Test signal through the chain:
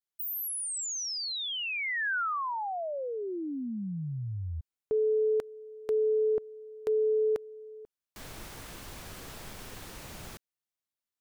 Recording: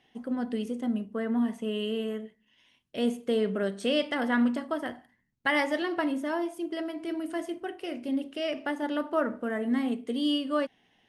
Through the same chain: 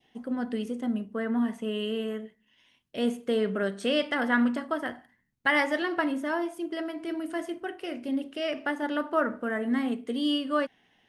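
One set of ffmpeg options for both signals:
-af "adynamicequalizer=threshold=0.00562:dfrequency=1500:dqfactor=1.5:tfrequency=1500:tqfactor=1.5:attack=5:release=100:ratio=0.375:range=2.5:mode=boostabove:tftype=bell"

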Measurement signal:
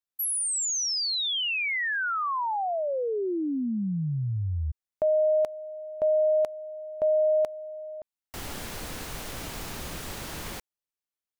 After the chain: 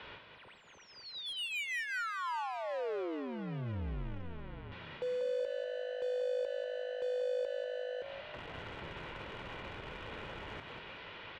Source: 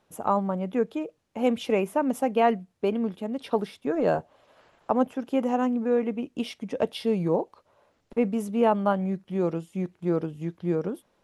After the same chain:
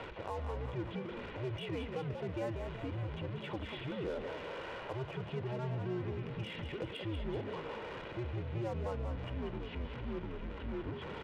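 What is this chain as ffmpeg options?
-filter_complex "[0:a]aeval=exprs='val(0)+0.5*0.0376*sgn(val(0))':c=same,areverse,acompressor=mode=upward:threshold=0.0398:ratio=2.5:attack=9:release=103:knee=2.83:detection=peak,areverse,highpass=f=160:t=q:w=0.5412,highpass=f=160:t=q:w=1.307,lowpass=f=3300:t=q:w=0.5176,lowpass=f=3300:t=q:w=0.7071,lowpass=f=3300:t=q:w=1.932,afreqshift=-120,aecho=1:1:2.1:0.4,asplit=2[s0][s1];[s1]acrusher=bits=3:mix=0:aa=0.5,volume=0.531[s2];[s0][s2]amix=inputs=2:normalize=0,acompressor=threshold=0.0251:ratio=2.5:attack=0.74:release=113:detection=rms,asplit=7[s3][s4][s5][s6][s7][s8][s9];[s4]adelay=189,afreqshift=52,volume=0.447[s10];[s5]adelay=378,afreqshift=104,volume=0.219[s11];[s6]adelay=567,afreqshift=156,volume=0.107[s12];[s7]adelay=756,afreqshift=208,volume=0.0525[s13];[s8]adelay=945,afreqshift=260,volume=0.0257[s14];[s9]adelay=1134,afreqshift=312,volume=0.0126[s15];[s3][s10][s11][s12][s13][s14][s15]amix=inputs=7:normalize=0,volume=0.376"

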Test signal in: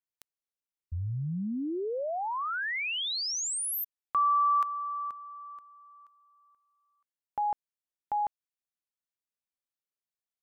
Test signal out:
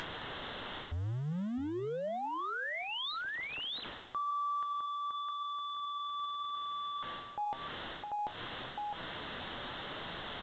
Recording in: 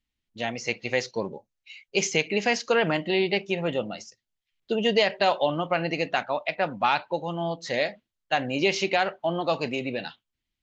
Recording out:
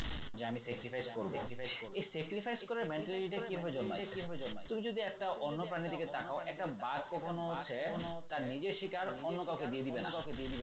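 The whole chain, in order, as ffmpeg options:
-filter_complex "[0:a]aeval=exprs='val(0)+0.5*0.0188*sgn(val(0))':c=same,equalizer=f=2400:t=o:w=0.3:g=-13,aecho=1:1:659:0.251,aresample=8000,aresample=44100,asplit=2[s0][s1];[s1]acompressor=mode=upward:threshold=0.0316:ratio=2.5:attack=15:release=129:knee=2.83:detection=peak,volume=0.891[s2];[s0][s2]amix=inputs=2:normalize=0,flanger=delay=6.1:depth=2.5:regen=78:speed=0.89:shape=sinusoidal,areverse,acompressor=threshold=0.0141:ratio=5:attack=1.2:release=421:knee=1:detection=peak,areverse,volume=1.26" -ar 16000 -c:a pcm_alaw

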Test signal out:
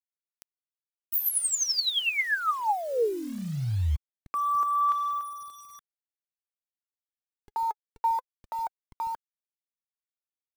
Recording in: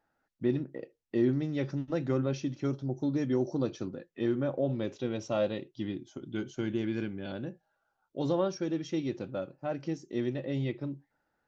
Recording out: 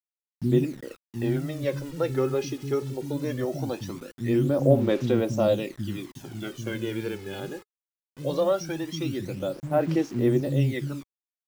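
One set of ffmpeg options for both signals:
-filter_complex "[0:a]acrossover=split=240[s0][s1];[s1]adelay=80[s2];[s0][s2]amix=inputs=2:normalize=0,acrusher=bits=8:mix=0:aa=0.000001,aphaser=in_gain=1:out_gain=1:delay=2.4:decay=0.6:speed=0.2:type=sinusoidal,volume=1.68"

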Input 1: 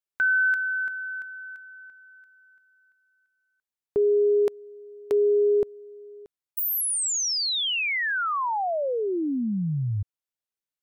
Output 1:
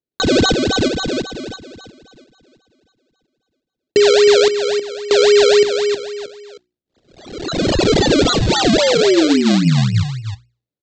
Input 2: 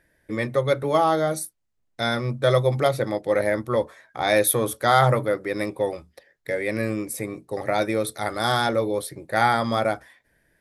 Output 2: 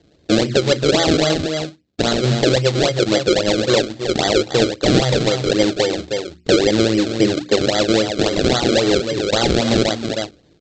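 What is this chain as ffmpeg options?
-filter_complex "[0:a]lowpass=6100,asplit=2[s0][s1];[s1]acompressor=threshold=0.0316:ratio=6:release=265:knee=6:detection=peak,volume=1.41[s2];[s0][s2]amix=inputs=2:normalize=0,asplit=2[s3][s4];[s4]adelay=314.9,volume=0.355,highshelf=f=4000:g=-7.08[s5];[s3][s5]amix=inputs=2:normalize=0,adynamicsmooth=sensitivity=1.5:basefreq=840,highpass=f=50:w=0.5412,highpass=f=50:w=1.3066,bandreject=f=60:t=h:w=6,bandreject=f=120:t=h:w=6,bandreject=f=180:t=h:w=6,bandreject=f=240:t=h:w=6,bandreject=f=300:t=h:w=6,bandreject=f=360:t=h:w=6,aresample=16000,acrusher=samples=12:mix=1:aa=0.000001:lfo=1:lforange=12:lforate=3.7,aresample=44100,equalizer=f=250:t=o:w=0.67:g=-5,equalizer=f=1000:t=o:w=0.67:g=-7,equalizer=f=4000:t=o:w=0.67:g=10,alimiter=limit=0.282:level=0:latency=1:release=417,equalizer=f=290:t=o:w=1.6:g=9.5,volume=1.78"

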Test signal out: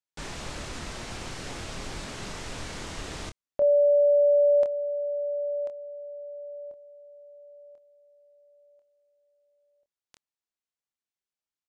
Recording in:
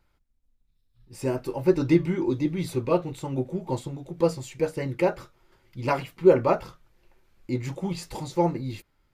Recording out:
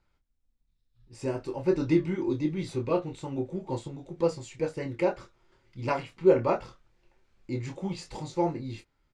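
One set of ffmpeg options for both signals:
-filter_complex "[0:a]lowpass=f=8300:w=0.5412,lowpass=f=8300:w=1.3066,asplit=2[s0][s1];[s1]adelay=26,volume=0.447[s2];[s0][s2]amix=inputs=2:normalize=0,volume=0.596"

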